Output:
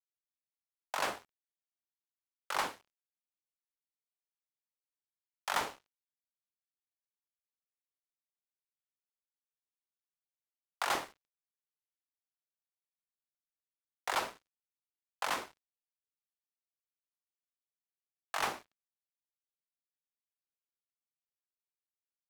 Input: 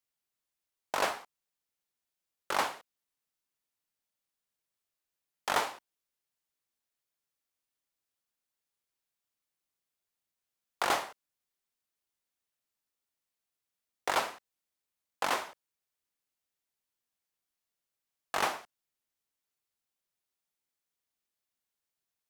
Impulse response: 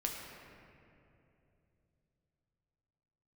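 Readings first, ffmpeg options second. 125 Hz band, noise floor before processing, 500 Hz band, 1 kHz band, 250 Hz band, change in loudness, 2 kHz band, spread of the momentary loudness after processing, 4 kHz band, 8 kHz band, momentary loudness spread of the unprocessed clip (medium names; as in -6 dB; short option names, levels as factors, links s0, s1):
-3.0 dB, under -85 dBFS, -6.0 dB, -4.0 dB, -4.0 dB, -3.5 dB, -3.0 dB, 10 LU, -3.0 dB, -3.0 dB, 14 LU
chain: -filter_complex "[0:a]acrossover=split=550[s0][s1];[s0]adelay=50[s2];[s2][s1]amix=inputs=2:normalize=0,asplit=2[s3][s4];[1:a]atrim=start_sample=2205[s5];[s4][s5]afir=irnorm=-1:irlink=0,volume=0.126[s6];[s3][s6]amix=inputs=2:normalize=0,aeval=exprs='sgn(val(0))*max(abs(val(0))-0.00447,0)':c=same,volume=0.708"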